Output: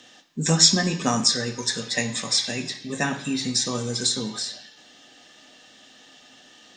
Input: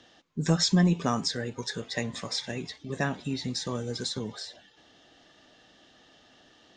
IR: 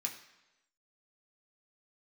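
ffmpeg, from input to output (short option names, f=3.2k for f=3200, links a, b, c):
-filter_complex "[0:a]asplit=2[a][b];[1:a]atrim=start_sample=2205,highshelf=f=3.5k:g=11.5[c];[b][c]afir=irnorm=-1:irlink=0,volume=2dB[d];[a][d]amix=inputs=2:normalize=0"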